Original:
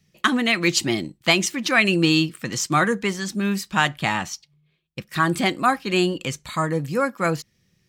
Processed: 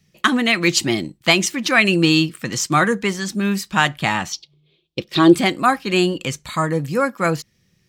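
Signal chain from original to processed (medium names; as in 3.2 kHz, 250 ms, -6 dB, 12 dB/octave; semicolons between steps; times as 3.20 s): 4.32–5.35 s: FFT filter 220 Hz 0 dB, 330 Hz +13 dB, 1.7 kHz -7 dB, 3.5 kHz +11 dB, 9.1 kHz -7 dB; trim +3 dB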